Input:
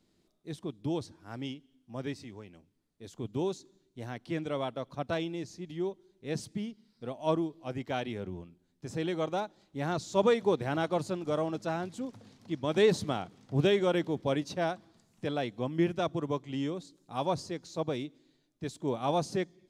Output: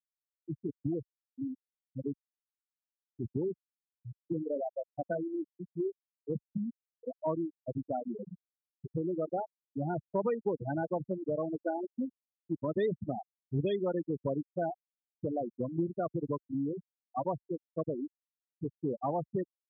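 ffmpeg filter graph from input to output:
ffmpeg -i in.wav -filter_complex "[0:a]asettb=1/sr,asplit=3[link_01][link_02][link_03];[link_01]atrim=end=4.334[link_04];[link_02]atrim=start=4.33:end=5.88,asetpts=PTS-STARTPTS,afade=type=in:duration=0.004:curve=qsin,afade=type=out:start_time=1.546:duration=0.004:curve=qsin,highpass=130,asplit=2[link_05][link_06];[link_06]adelay=32,volume=-14dB[link_07];[link_05][link_07]amix=inputs=2:normalize=0,atrim=end_sample=68355[link_08];[link_03]atrim=start=5.876[link_09];[link_04][link_08]acrossfade=duration=0.004:curve1=hsin:curve2=qsin[link_10];[link_10][link_09]acrossfade=duration=0.004:curve1=qsin:curve2=hsin,asettb=1/sr,asplit=3[link_11][link_12][link_13];[link_11]atrim=end=11.594[link_14];[link_12]atrim=start=11.59:end=12.05,asetpts=PTS-STARTPTS,afade=type=in:duration=0.004:curve=qsin,afade=type=out:start_time=0.456:duration=0.004:curve=qsin,acrusher=bits=2:mode=log:mix=0:aa=0.000001,lowpass=frequency=5000:width=0.5412,lowpass=frequency=5000:width=1.3066,aecho=1:1:3.4:0.57,atrim=end_sample=20286[link_15];[link_13]atrim=start=12.046[link_16];[link_14][link_15]acrossfade=duration=0.004:curve1=hsin:curve2=qsin[link_17];[link_17][link_16]acrossfade=duration=0.004:curve1=qsin:curve2=hsin,afftfilt=real='re*gte(hypot(re,im),0.1)':imag='im*gte(hypot(re,im),0.1)':win_size=1024:overlap=0.75,highpass=53,acompressor=threshold=-35dB:ratio=3,volume=4dB" out.wav

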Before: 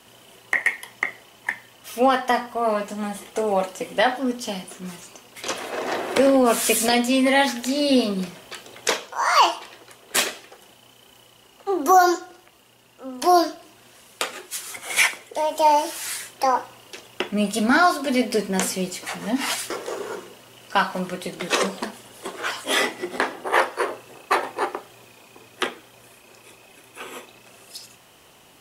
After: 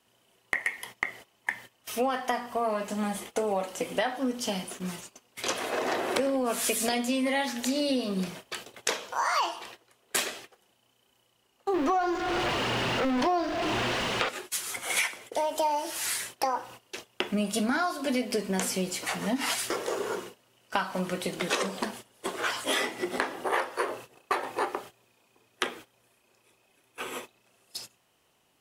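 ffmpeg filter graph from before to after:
ffmpeg -i in.wav -filter_complex "[0:a]asettb=1/sr,asplit=3[link_01][link_02][link_03];[link_01]atrim=end=11.744[link_04];[link_02]atrim=start=11.74:end=14.29,asetpts=PTS-STARTPTS,afade=type=in:duration=0.004:curve=qsin,afade=type=out:start_time=2.546:duration=0.004:curve=qsin,aeval=exprs='val(0)+0.5*0.106*sgn(val(0))':channel_layout=same,lowpass=3300,acrusher=bits=7:mix=0:aa=0.5[link_05];[link_03]atrim=start=14.286[link_06];[link_04][link_05]acrossfade=duration=0.004:curve1=hsin:curve2=qsin[link_07];[link_07][link_06]acrossfade=duration=0.004:curve1=qsin:curve2=hsin,agate=range=-17dB:threshold=-41dB:ratio=16:detection=peak,acompressor=threshold=-25dB:ratio=6" out.wav

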